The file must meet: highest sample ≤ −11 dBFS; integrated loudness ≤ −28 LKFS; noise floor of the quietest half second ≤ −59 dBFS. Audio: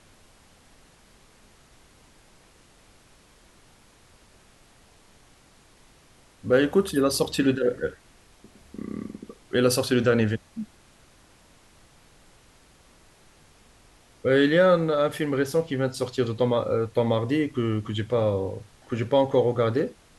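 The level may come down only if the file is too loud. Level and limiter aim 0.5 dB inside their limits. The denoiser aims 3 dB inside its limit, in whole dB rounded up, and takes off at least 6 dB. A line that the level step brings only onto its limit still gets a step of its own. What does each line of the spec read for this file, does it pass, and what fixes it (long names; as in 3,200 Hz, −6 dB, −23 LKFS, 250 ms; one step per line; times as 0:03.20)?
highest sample −8.0 dBFS: out of spec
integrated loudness −24.0 LKFS: out of spec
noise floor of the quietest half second −56 dBFS: out of spec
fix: level −4.5 dB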